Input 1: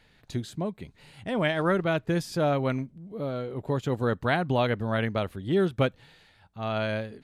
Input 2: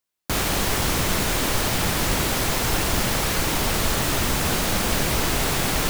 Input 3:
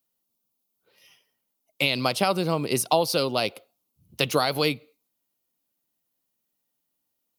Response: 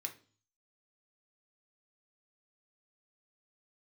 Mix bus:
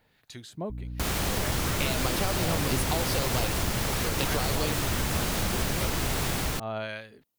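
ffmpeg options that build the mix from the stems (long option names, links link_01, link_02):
-filter_complex "[0:a]lowshelf=frequency=240:gain=-11.5,acrossover=split=1200[link_01][link_02];[link_01]aeval=exprs='val(0)*(1-0.7/2+0.7/2*cos(2*PI*1.5*n/s))':channel_layout=same[link_03];[link_02]aeval=exprs='val(0)*(1-0.7/2-0.7/2*cos(2*PI*1.5*n/s))':channel_layout=same[link_04];[link_03][link_04]amix=inputs=2:normalize=0,volume=0dB[link_05];[1:a]dynaudnorm=framelen=330:gausssize=3:maxgain=11.5dB,aeval=exprs='val(0)+0.0282*(sin(2*PI*60*n/s)+sin(2*PI*2*60*n/s)/2+sin(2*PI*3*60*n/s)/3+sin(2*PI*4*60*n/s)/4+sin(2*PI*5*60*n/s)/5)':channel_layout=same,adelay=700,volume=-7dB[link_06];[2:a]acompressor=threshold=-26dB:ratio=6,volume=-3dB[link_07];[link_05][link_06]amix=inputs=2:normalize=0,acompressor=threshold=-26dB:ratio=6,volume=0dB[link_08];[link_07][link_08]amix=inputs=2:normalize=0,equalizer=frequency=91:width_type=o:width=1.8:gain=5"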